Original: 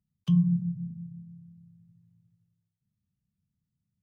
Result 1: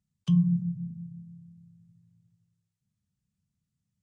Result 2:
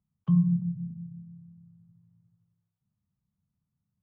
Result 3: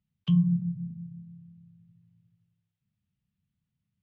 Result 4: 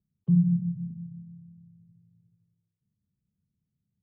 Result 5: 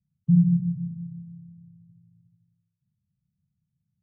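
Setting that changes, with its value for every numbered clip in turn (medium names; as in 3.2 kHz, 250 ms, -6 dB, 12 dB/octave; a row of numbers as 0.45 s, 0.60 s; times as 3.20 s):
resonant low-pass, frequency: 7.9 kHz, 1.1 kHz, 3 kHz, 430 Hz, 160 Hz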